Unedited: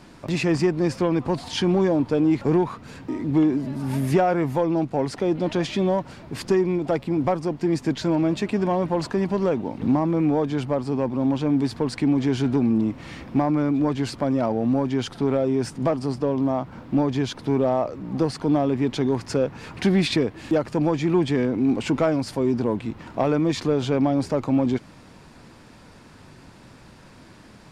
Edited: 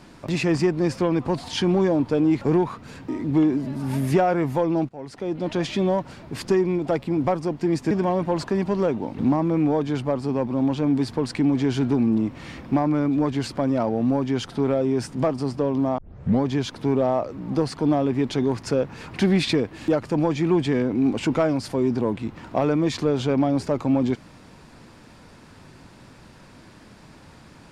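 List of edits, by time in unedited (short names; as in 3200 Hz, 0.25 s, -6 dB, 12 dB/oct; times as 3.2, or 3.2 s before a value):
4.89–5.67 fade in, from -20 dB
7.91–8.54 cut
16.61 tape start 0.45 s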